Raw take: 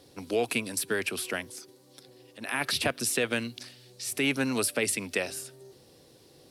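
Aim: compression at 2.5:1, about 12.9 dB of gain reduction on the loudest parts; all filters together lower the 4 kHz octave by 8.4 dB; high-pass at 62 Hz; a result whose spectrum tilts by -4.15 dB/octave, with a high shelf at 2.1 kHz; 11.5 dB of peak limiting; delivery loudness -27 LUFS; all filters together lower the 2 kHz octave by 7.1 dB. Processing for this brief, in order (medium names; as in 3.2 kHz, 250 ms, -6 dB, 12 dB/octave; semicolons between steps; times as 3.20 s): high-pass 62 Hz; peaking EQ 2 kHz -4.5 dB; treble shelf 2.1 kHz -6 dB; peaking EQ 4 kHz -3.5 dB; compression 2.5:1, threshold -45 dBFS; trim +22.5 dB; peak limiter -16.5 dBFS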